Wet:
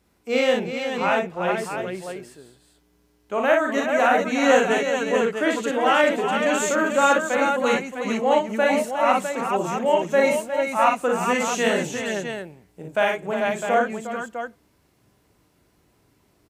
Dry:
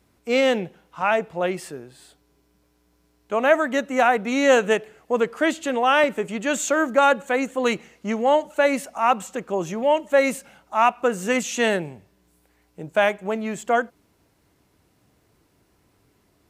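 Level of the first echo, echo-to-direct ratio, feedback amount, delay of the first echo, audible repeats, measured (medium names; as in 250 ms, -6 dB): -4.5 dB, 1.5 dB, no regular repeats, 40 ms, 4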